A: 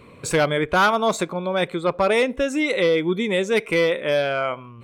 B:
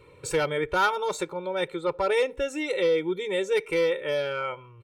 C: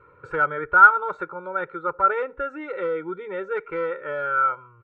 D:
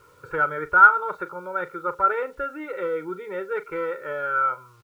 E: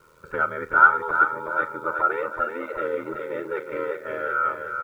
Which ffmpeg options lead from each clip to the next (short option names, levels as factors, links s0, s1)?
-af "aecho=1:1:2.2:0.96,volume=0.355"
-af "lowpass=f=1400:t=q:w=10,volume=0.596"
-filter_complex "[0:a]acrusher=bits=9:mix=0:aa=0.000001,asplit=2[s0][s1];[s1]adelay=39,volume=0.211[s2];[s0][s2]amix=inputs=2:normalize=0,volume=0.891"
-af "aeval=exprs='val(0)*sin(2*PI*40*n/s)':c=same,aecho=1:1:375|750|1125|1500|1875|2250:0.501|0.246|0.12|0.059|0.0289|0.0142,volume=1.19"